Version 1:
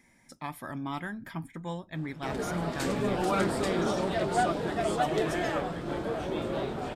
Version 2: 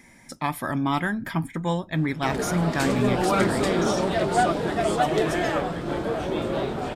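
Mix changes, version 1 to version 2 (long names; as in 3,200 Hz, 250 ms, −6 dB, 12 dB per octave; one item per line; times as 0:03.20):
speech +11.0 dB
background +5.5 dB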